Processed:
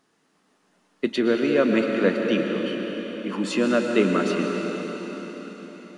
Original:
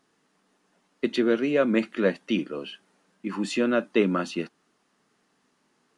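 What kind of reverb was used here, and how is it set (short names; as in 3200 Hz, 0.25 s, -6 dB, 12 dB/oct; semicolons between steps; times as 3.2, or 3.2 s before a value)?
digital reverb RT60 5 s, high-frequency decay 1×, pre-delay 85 ms, DRR 2 dB; gain +1.5 dB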